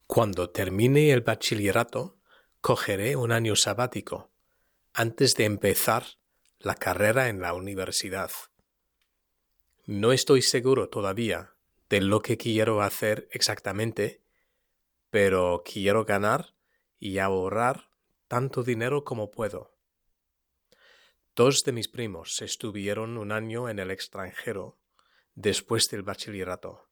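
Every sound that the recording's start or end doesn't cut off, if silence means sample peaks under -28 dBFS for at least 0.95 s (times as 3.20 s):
9.89–14.08 s
15.14–19.58 s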